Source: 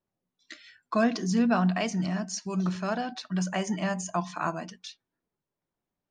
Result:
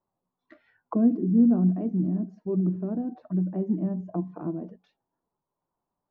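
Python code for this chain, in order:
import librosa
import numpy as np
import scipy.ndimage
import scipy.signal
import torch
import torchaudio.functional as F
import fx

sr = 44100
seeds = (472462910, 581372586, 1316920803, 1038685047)

y = fx.envelope_lowpass(x, sr, base_hz=320.0, top_hz=1000.0, q=3.1, full_db=-27.0, direction='down')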